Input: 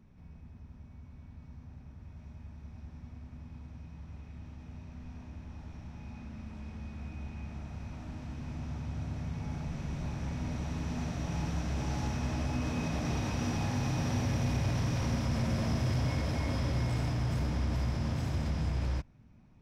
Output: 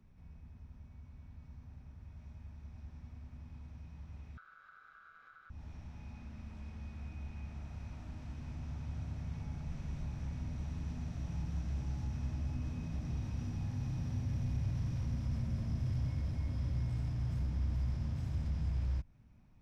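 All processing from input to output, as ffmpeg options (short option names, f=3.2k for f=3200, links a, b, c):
-filter_complex "[0:a]asettb=1/sr,asplit=3[a][b][c];[a]atrim=end=4.374[d];[b]atrim=start=4.37:end=5.5,asetpts=PTS-STARTPTS,afade=t=in:d=0.004:c=qsin,afade=t=out:st=1.126:d=0.004:c=qsin,lowpass=f=4.7k:w=0.5412,lowpass=f=4.7k:w=1.3066,aeval=exprs='val(0)*sin(2*PI*1400*n/s)':c=same[e];[c]atrim=start=5.496[f];[d][e]acrossfade=d=0.004:c1=hsin:c2=qsin[g];[g][f]acrossfade=d=0.004:c1=qsin:c2=hsin,lowshelf=f=430:g=-7,acrossover=split=250[h][i];[i]acompressor=threshold=-51dB:ratio=10[j];[h][j]amix=inputs=2:normalize=0,lowshelf=f=120:g=12,volume=-4dB"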